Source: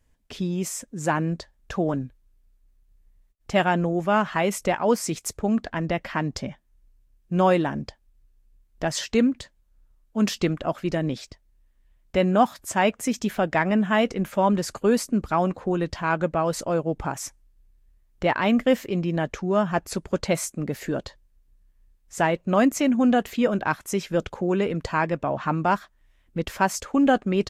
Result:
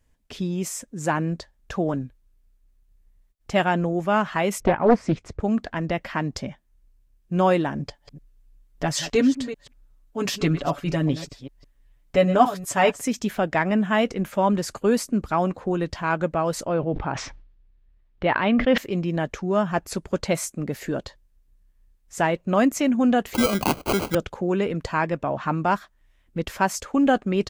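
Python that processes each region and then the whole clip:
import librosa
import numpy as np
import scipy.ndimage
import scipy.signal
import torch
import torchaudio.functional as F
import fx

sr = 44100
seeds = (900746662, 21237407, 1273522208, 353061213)

y = fx.chain(x, sr, fx.lowpass(hz=2600.0, slope=12),
    fx.low_shelf(hz=380.0, db=9.5),
    fx.doppler_dist(depth_ms=0.52), at=(4.6, 5.4))
y = fx.chain(y, sr, fx.reverse_delay(ms=194, wet_db=-12.5),
    fx.comb(ms=7.0, depth=0.78), at=(7.79, 13.01))
y = fx.chain(y, sr, fx.lowpass(hz=4000.0, slope=24),
    fx.sustainer(db_per_s=70.0), at=(16.67, 18.78))
y = fx.chain(y, sr, fx.high_shelf(hz=2300.0, db=11.5),
    fx.sample_hold(seeds[0], rate_hz=1800.0, jitter_pct=0),
    fx.band_squash(depth_pct=70), at=(23.34, 24.15))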